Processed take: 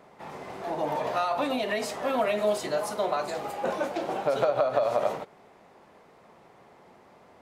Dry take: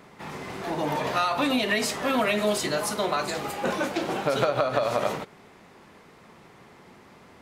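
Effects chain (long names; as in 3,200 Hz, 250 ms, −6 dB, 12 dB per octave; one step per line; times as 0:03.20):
parametric band 660 Hz +10 dB 1.4 octaves
level −8.5 dB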